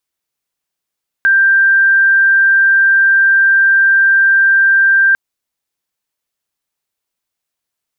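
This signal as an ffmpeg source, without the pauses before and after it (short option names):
-f lavfi -i "sine=f=1580:d=3.9:r=44100,volume=11.56dB"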